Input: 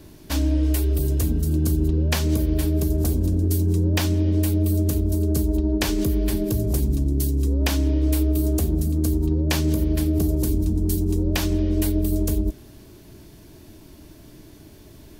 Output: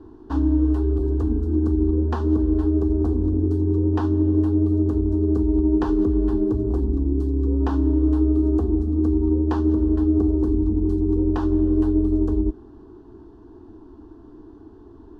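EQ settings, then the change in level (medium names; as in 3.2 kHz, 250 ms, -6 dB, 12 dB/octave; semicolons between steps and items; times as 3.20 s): low-pass 1.1 kHz 12 dB/octave; bass shelf 140 Hz -6.5 dB; static phaser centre 590 Hz, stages 6; +6.5 dB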